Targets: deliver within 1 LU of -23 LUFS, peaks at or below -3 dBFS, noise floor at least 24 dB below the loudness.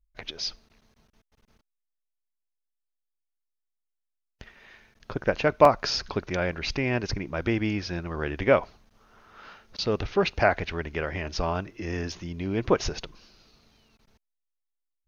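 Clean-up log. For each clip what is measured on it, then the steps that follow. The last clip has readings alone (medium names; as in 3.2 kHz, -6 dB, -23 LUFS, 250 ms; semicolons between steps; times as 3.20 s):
dropouts 2; longest dropout 2.4 ms; loudness -27.0 LUFS; peak level -3.0 dBFS; loudness target -23.0 LUFS
-> interpolate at 5.65/12.12 s, 2.4 ms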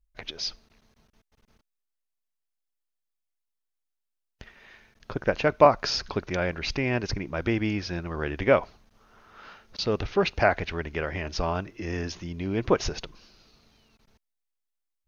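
dropouts 0; loudness -27.0 LUFS; peak level -3.0 dBFS; loudness target -23.0 LUFS
-> trim +4 dB; peak limiter -3 dBFS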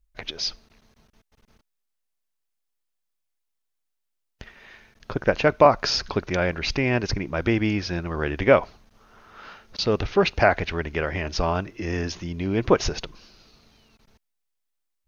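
loudness -23.5 LUFS; peak level -3.0 dBFS; noise floor -78 dBFS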